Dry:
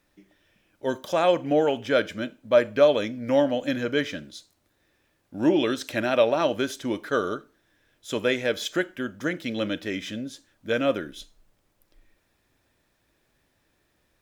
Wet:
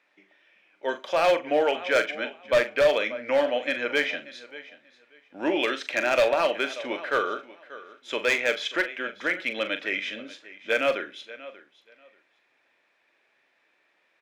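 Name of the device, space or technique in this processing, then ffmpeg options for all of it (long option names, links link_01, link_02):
megaphone: -filter_complex "[0:a]highpass=510,lowpass=2900,equalizer=frequency=2300:width_type=o:width=0.57:gain=8,highshelf=frequency=6600:gain=9,aecho=1:1:586|1172:0.126|0.0239,asoftclip=type=hard:threshold=-18dB,asplit=2[link_01][link_02];[link_02]adelay=41,volume=-10dB[link_03];[link_01][link_03]amix=inputs=2:normalize=0,volume=2dB"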